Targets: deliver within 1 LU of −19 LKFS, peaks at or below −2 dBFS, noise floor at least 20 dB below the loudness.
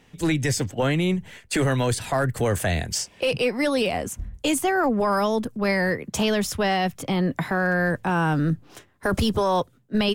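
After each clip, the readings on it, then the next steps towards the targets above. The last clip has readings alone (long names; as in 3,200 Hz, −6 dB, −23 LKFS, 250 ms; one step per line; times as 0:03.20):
share of clipped samples 0.2%; peaks flattened at −15.0 dBFS; integrated loudness −24.0 LKFS; sample peak −15.0 dBFS; target loudness −19.0 LKFS
→ clipped peaks rebuilt −15 dBFS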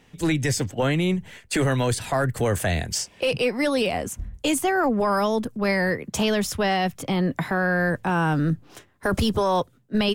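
share of clipped samples 0.0%; integrated loudness −24.0 LKFS; sample peak −13.5 dBFS; target loudness −19.0 LKFS
→ level +5 dB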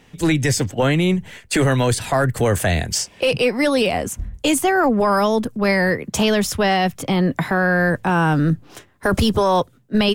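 integrated loudness −19.0 LKFS; sample peak −8.5 dBFS; background noise floor −52 dBFS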